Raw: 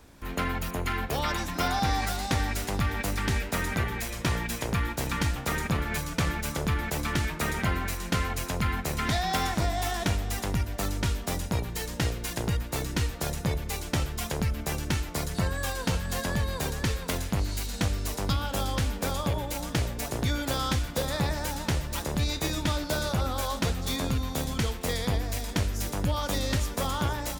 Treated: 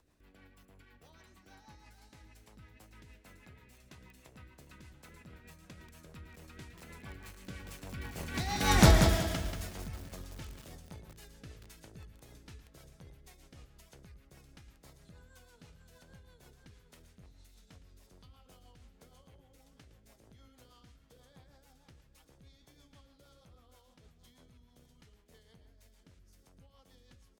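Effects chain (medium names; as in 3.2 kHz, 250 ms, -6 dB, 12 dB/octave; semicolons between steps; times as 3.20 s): Doppler pass-by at 8.82 s, 27 m/s, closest 1.5 m; de-hum 102.7 Hz, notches 20; in parallel at -2.5 dB: upward compressor, threshold -56 dBFS; on the sum: rotary cabinet horn 6.3 Hz; on a send: delay 112 ms -14 dB; on the sum: bit-crushed delay 185 ms, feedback 35%, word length 9-bit, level -5 dB; trim +7 dB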